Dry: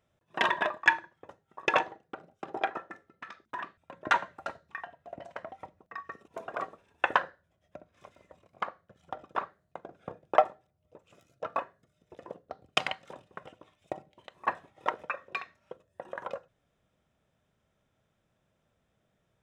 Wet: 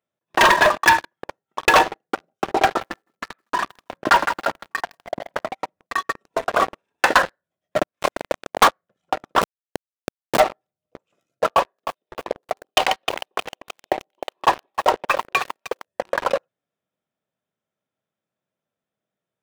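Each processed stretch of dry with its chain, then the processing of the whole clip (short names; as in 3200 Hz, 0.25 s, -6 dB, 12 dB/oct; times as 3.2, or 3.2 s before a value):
2.65–5.52 air absorption 460 m + lo-fi delay 0.162 s, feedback 35%, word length 9-bit, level -13 dB
7.76–8.68 HPF 53 Hz + sample leveller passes 5
9.41–10.4 tilt +2.5 dB/oct + Schmitt trigger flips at -31.5 dBFS
11.47–15.86 speaker cabinet 340–4400 Hz, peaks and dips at 380 Hz +4 dB, 820 Hz +3 dB, 1400 Hz -5 dB, 2100 Hz -6 dB + lo-fi delay 0.309 s, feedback 55%, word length 8-bit, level -12.5 dB
whole clip: HPF 180 Hz 12 dB/oct; sample leveller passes 5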